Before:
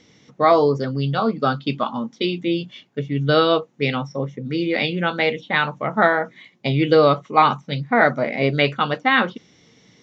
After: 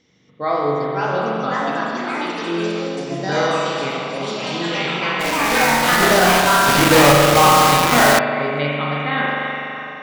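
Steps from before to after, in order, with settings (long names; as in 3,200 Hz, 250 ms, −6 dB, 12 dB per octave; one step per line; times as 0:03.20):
0:01.65–0:03.07: elliptic band-pass filter 180–5,100 Hz
on a send: echo through a band-pass that steps 319 ms, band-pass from 2,600 Hz, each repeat −0.7 octaves, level −8.5 dB
on the sum: spring reverb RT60 2.9 s, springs 41 ms, chirp 80 ms, DRR −4.5 dB
0:06.68–0:08.19: log-companded quantiser 2 bits
delay with pitch and tempo change per echo 622 ms, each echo +4 semitones, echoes 3
level −8 dB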